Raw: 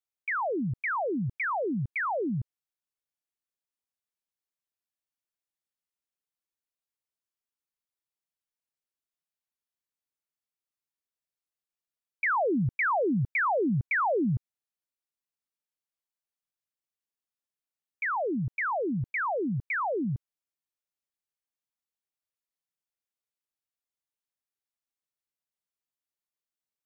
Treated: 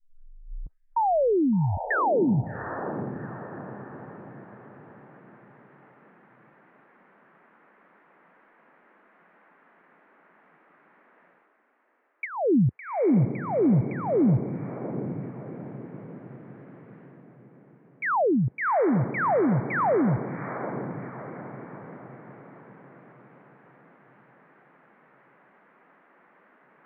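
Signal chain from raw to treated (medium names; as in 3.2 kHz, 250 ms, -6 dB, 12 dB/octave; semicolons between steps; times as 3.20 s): tape start-up on the opening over 2.41 s; low-pass that closes with the level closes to 420 Hz, closed at -24 dBFS; steep low-pass 1.9 kHz 36 dB/octave; low-pass that closes with the level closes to 1.2 kHz, closed at -28.5 dBFS; peaking EQ 76 Hz -8.5 dB 0.95 oct; reverse; upward compressor, threshold -39 dBFS; reverse; echo that smears into a reverb 761 ms, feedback 48%, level -10 dB; spectral noise reduction 23 dB; trim +8 dB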